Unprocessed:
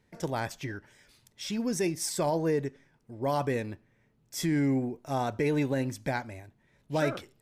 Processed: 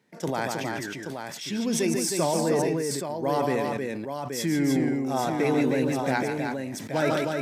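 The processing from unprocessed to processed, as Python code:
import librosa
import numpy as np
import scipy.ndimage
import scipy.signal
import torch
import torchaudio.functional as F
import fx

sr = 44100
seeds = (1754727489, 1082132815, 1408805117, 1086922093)

p1 = scipy.signal.sosfilt(scipy.signal.butter(4, 150.0, 'highpass', fs=sr, output='sos'), x)
p2 = p1 + fx.echo_multitap(p1, sr, ms=(144, 314, 826), db=(-7.0, -5.0, -7.0), dry=0)
p3 = fx.sustainer(p2, sr, db_per_s=23.0)
y = F.gain(torch.from_numpy(p3), 2.0).numpy()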